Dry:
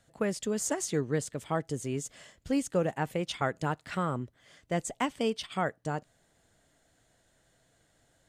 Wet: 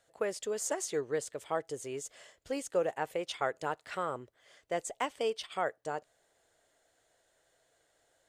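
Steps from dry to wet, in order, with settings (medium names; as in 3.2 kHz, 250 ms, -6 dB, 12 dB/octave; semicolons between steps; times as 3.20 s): resonant low shelf 310 Hz -11 dB, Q 1.5; trim -3 dB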